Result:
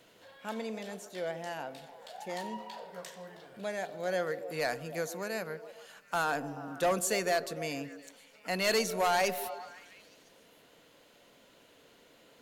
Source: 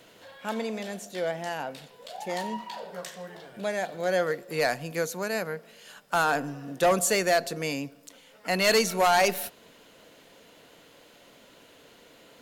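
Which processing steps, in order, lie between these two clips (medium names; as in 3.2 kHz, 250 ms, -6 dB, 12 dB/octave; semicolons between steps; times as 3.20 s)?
repeats whose band climbs or falls 144 ms, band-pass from 360 Hz, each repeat 0.7 oct, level -9 dB; trim -6.5 dB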